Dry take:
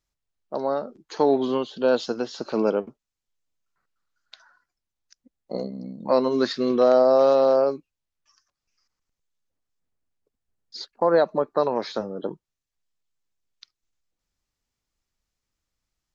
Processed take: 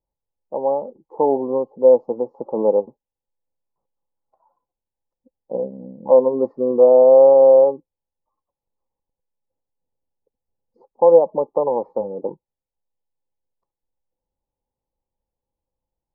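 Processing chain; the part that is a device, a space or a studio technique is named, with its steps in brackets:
elliptic low-pass filter 1,000 Hz, stop band 40 dB
inside a helmet (high-shelf EQ 3,000 Hz −8.5 dB; hollow resonant body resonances 520/830/1,800 Hz, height 12 dB)
level −1 dB

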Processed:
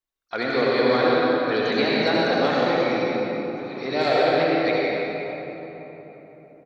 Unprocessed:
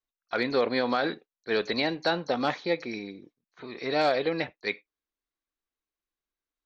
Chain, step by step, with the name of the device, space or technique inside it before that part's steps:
cave (single-tap delay 174 ms −8 dB; convolution reverb RT60 4.0 s, pre-delay 63 ms, DRR −5.5 dB)

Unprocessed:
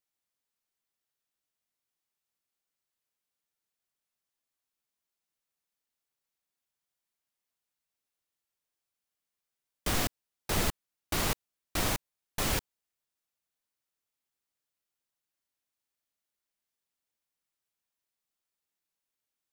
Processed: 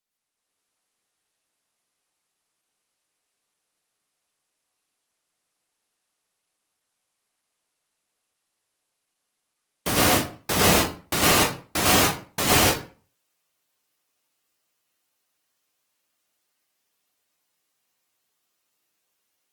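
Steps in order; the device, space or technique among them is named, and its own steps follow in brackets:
far-field microphone of a smart speaker (convolution reverb RT60 0.40 s, pre-delay 97 ms, DRR −6.5 dB; high-pass filter 110 Hz 12 dB per octave; automatic gain control gain up to 7 dB; Opus 20 kbit/s 48,000 Hz)

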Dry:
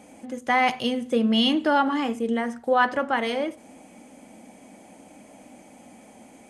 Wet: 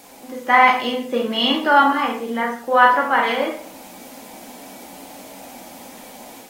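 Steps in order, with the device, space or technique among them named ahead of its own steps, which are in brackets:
dynamic equaliser 1,500 Hz, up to +7 dB, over −35 dBFS, Q 0.97
filmed off a television (band-pass filter 230–6,000 Hz; parametric band 960 Hz +6.5 dB 0.44 octaves; convolution reverb RT60 0.50 s, pre-delay 13 ms, DRR 0.5 dB; white noise bed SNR 28 dB; automatic gain control gain up to 4 dB; AAC 48 kbit/s 44,100 Hz)

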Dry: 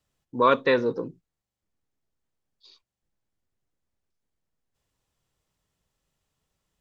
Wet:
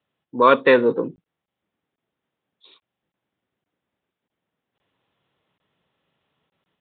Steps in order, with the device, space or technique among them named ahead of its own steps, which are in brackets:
call with lost packets (high-pass filter 170 Hz 12 dB per octave; downsampling to 8,000 Hz; automatic gain control gain up to 6.5 dB; dropped packets)
level +3 dB

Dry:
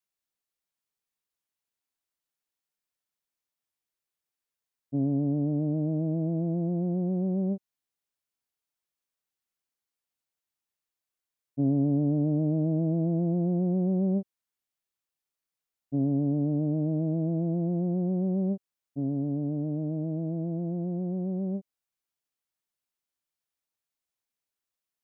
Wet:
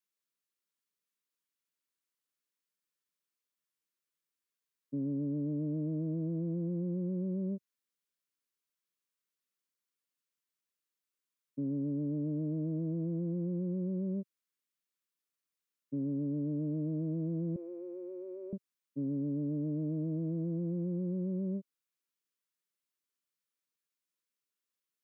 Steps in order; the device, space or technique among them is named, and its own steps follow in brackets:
PA system with an anti-feedback notch (high-pass filter 140 Hz 24 dB per octave; Butterworth band-reject 750 Hz, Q 2; brickwall limiter −27 dBFS, peak gain reduction 8 dB)
0:17.56–0:18.53: elliptic high-pass filter 360 Hz
level −2 dB

